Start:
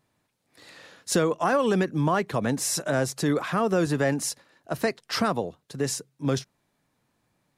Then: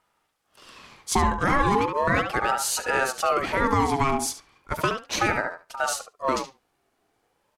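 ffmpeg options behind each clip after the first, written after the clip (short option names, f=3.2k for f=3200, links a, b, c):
-filter_complex "[0:a]asplit=2[a][b];[b]adelay=71,lowpass=f=2.8k:p=1,volume=-6dB,asplit=2[c][d];[d]adelay=71,lowpass=f=2.8k:p=1,volume=0.16,asplit=2[e][f];[f]adelay=71,lowpass=f=2.8k:p=1,volume=0.16[g];[a][c][e][g]amix=inputs=4:normalize=0,aeval=exprs='val(0)*sin(2*PI*820*n/s+820*0.35/0.36*sin(2*PI*0.36*n/s))':c=same,volume=3.5dB"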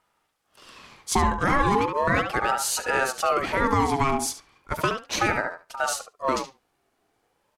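-af anull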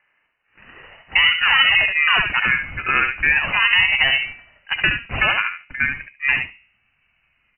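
-af "bandreject=f=67.53:t=h:w=4,bandreject=f=135.06:t=h:w=4,bandreject=f=202.59:t=h:w=4,bandreject=f=270.12:t=h:w=4,bandreject=f=337.65:t=h:w=4,bandreject=f=405.18:t=h:w=4,bandreject=f=472.71:t=h:w=4,bandreject=f=540.24:t=h:w=4,bandreject=f=607.77:t=h:w=4,bandreject=f=675.3:t=h:w=4,bandreject=f=742.83:t=h:w=4,bandreject=f=810.36:t=h:w=4,bandreject=f=877.89:t=h:w=4,bandreject=f=945.42:t=h:w=4,bandreject=f=1.01295k:t=h:w=4,bandreject=f=1.08048k:t=h:w=4,lowpass=f=2.6k:t=q:w=0.5098,lowpass=f=2.6k:t=q:w=0.6013,lowpass=f=2.6k:t=q:w=0.9,lowpass=f=2.6k:t=q:w=2.563,afreqshift=-3000,asubboost=boost=9.5:cutoff=160,volume=6.5dB"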